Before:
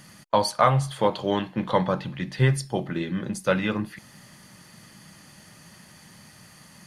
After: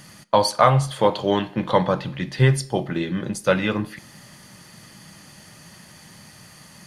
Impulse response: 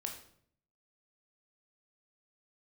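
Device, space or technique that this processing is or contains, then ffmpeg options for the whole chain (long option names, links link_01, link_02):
filtered reverb send: -filter_complex "[0:a]equalizer=frequency=1500:width_type=o:width=2.3:gain=-2.5,asplit=2[link_01][link_02];[link_02]highpass=frequency=200:width=0.5412,highpass=frequency=200:width=1.3066,lowpass=8100[link_03];[1:a]atrim=start_sample=2205[link_04];[link_03][link_04]afir=irnorm=-1:irlink=0,volume=-11dB[link_05];[link_01][link_05]amix=inputs=2:normalize=0,volume=4dB"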